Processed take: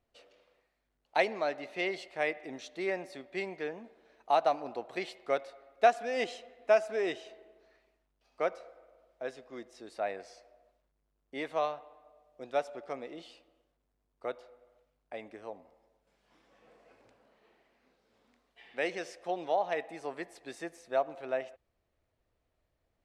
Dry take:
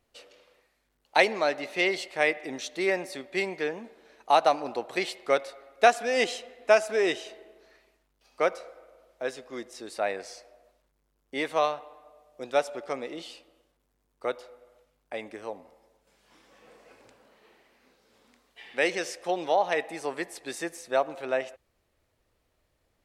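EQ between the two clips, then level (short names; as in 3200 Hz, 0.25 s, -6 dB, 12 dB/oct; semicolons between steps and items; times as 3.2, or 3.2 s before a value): LPF 3900 Hz 6 dB/oct; low shelf 220 Hz +3 dB; bell 680 Hz +5 dB 0.2 oct; -7.5 dB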